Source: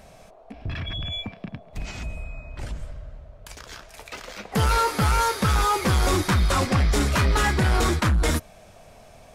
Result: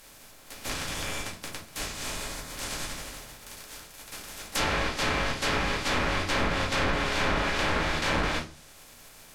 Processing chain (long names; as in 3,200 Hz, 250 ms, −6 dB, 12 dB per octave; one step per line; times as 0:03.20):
compressing power law on the bin magnitudes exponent 0.13
rectangular room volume 130 cubic metres, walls furnished, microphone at 2.2 metres
treble cut that deepens with the level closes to 750 Hz, closed at −7.5 dBFS
level −6.5 dB